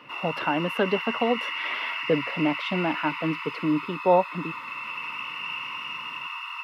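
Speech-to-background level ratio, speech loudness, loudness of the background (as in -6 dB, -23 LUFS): 4.5 dB, -27.0 LUFS, -31.5 LUFS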